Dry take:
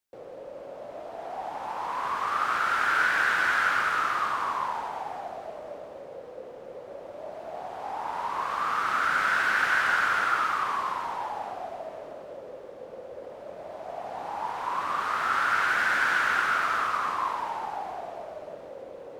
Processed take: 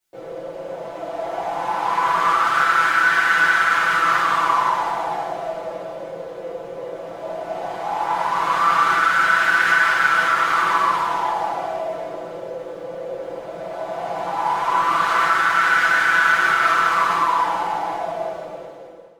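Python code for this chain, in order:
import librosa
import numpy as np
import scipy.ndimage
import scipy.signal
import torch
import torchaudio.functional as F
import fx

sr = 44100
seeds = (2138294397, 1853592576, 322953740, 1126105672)

p1 = fx.fade_out_tail(x, sr, length_s=0.95)
p2 = fx.over_compress(p1, sr, threshold_db=-28.0, ratio=-0.5)
p3 = p1 + (p2 * 10.0 ** (0.0 / 20.0))
p4 = p3 + 0.67 * np.pad(p3, (int(6.0 * sr / 1000.0), 0))[:len(p3)]
p5 = fx.rev_double_slope(p4, sr, seeds[0], early_s=0.51, late_s=2.0, knee_db=-16, drr_db=-8.5)
y = p5 * 10.0 ** (-6.5 / 20.0)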